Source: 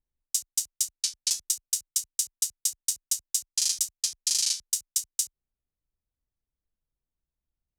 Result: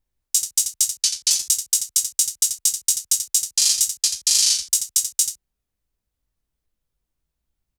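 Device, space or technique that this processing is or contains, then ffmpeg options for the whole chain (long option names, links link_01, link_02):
slapback doubling: -filter_complex "[0:a]asplit=3[link_01][link_02][link_03];[link_02]adelay=19,volume=-4dB[link_04];[link_03]adelay=85,volume=-8dB[link_05];[link_01][link_04][link_05]amix=inputs=3:normalize=0,volume=7dB"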